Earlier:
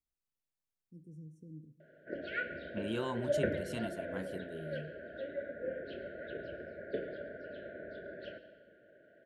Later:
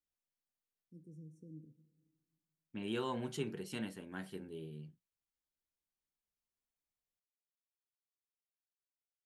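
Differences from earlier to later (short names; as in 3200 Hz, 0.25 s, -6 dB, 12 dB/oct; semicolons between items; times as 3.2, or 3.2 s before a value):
background: muted; master: add low shelf 110 Hz -10 dB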